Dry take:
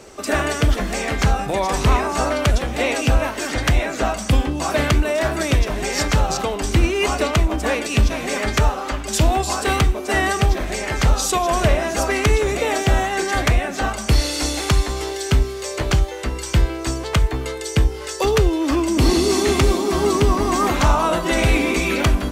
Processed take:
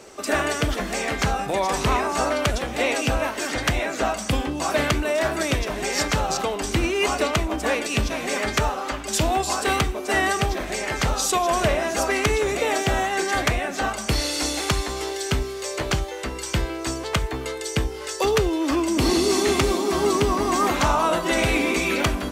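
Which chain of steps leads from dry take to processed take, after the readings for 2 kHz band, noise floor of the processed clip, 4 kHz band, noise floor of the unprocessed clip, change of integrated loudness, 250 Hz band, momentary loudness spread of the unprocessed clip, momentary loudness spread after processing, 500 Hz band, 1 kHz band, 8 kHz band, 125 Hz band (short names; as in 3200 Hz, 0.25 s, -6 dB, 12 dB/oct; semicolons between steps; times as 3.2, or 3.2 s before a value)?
-1.5 dB, -32 dBFS, -1.5 dB, -29 dBFS, -3.5 dB, -3.5 dB, 5 LU, 6 LU, -2.5 dB, -1.5 dB, -1.5 dB, -8.0 dB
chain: low shelf 130 Hz -10 dB; gain -1.5 dB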